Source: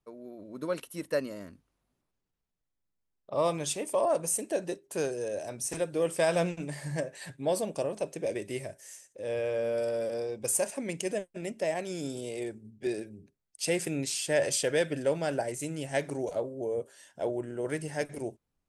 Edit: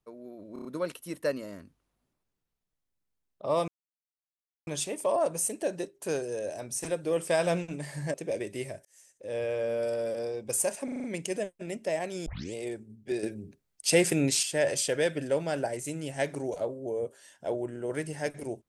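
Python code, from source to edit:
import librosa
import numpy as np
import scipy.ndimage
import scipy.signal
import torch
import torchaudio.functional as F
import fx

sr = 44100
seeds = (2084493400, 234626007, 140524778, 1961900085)

y = fx.edit(x, sr, fx.stutter(start_s=0.53, slice_s=0.03, count=5),
    fx.insert_silence(at_s=3.56, length_s=0.99),
    fx.cut(start_s=7.03, length_s=1.06),
    fx.fade_in_span(start_s=8.8, length_s=0.42),
    fx.stutter(start_s=10.79, slice_s=0.04, count=6),
    fx.tape_start(start_s=12.01, length_s=0.28),
    fx.clip_gain(start_s=12.98, length_s=1.2, db=6.5), tone=tone)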